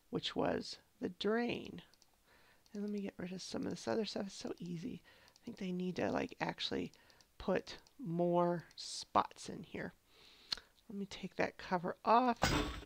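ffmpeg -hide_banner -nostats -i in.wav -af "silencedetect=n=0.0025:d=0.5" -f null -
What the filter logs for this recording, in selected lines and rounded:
silence_start: 2.02
silence_end: 2.66 | silence_duration: 0.64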